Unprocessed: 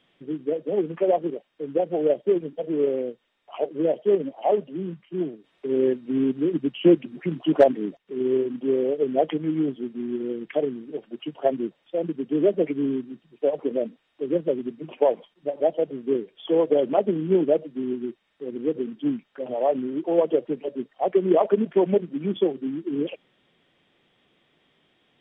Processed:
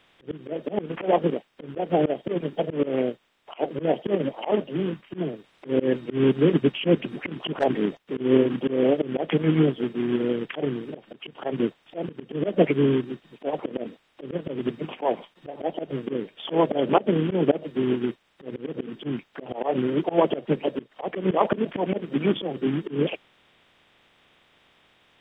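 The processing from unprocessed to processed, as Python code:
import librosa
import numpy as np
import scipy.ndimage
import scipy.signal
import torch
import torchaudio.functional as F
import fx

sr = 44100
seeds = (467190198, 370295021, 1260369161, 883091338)

y = fx.spec_clip(x, sr, under_db=14)
y = fx.auto_swell(y, sr, attack_ms=164.0)
y = y * librosa.db_to_amplitude(5.0)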